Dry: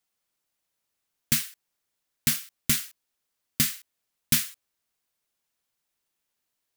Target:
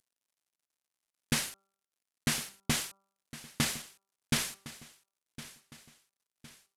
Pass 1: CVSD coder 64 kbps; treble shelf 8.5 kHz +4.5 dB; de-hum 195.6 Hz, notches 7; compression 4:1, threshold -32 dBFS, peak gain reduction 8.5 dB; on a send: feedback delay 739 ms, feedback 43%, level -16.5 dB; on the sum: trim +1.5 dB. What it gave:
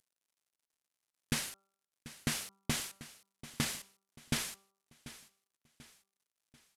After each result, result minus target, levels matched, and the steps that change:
echo 321 ms early; compression: peak gain reduction +5 dB
change: feedback delay 1060 ms, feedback 43%, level -16.5 dB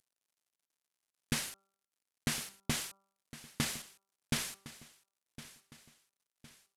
compression: peak gain reduction +5 dB
change: compression 4:1, threshold -25.5 dBFS, peak gain reduction 3.5 dB

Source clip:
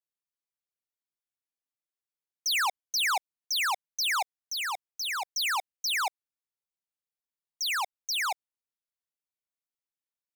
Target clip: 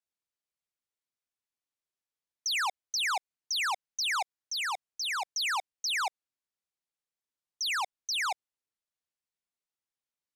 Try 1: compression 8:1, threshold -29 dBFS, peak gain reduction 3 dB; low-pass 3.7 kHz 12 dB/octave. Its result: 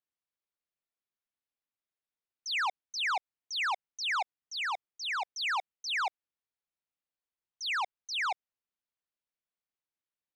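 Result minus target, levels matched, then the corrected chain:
8 kHz band -8.0 dB
compression 8:1, threshold -29 dBFS, peak gain reduction 3 dB; low-pass 9.7 kHz 12 dB/octave

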